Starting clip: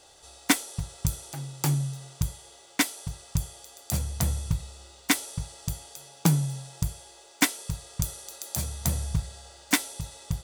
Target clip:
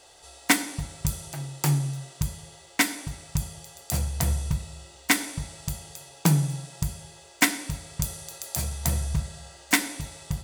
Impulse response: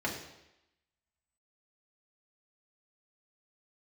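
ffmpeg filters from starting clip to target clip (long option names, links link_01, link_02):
-filter_complex "[0:a]asplit=2[link_01][link_02];[1:a]atrim=start_sample=2205,lowshelf=frequency=430:gain=-7.5[link_03];[link_02][link_03]afir=irnorm=-1:irlink=0,volume=-9dB[link_04];[link_01][link_04]amix=inputs=2:normalize=0"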